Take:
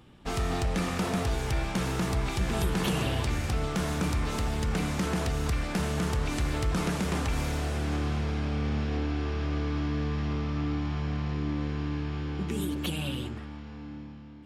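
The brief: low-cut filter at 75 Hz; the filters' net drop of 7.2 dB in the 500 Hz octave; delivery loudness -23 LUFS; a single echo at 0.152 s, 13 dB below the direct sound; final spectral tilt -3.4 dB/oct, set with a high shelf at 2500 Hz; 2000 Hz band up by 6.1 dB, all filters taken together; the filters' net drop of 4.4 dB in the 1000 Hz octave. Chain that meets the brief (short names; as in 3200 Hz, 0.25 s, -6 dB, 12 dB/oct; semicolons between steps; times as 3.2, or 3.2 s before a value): HPF 75 Hz; bell 500 Hz -8.5 dB; bell 1000 Hz -7 dB; bell 2000 Hz +5.5 dB; high shelf 2500 Hz +9 dB; echo 0.152 s -13 dB; gain +6.5 dB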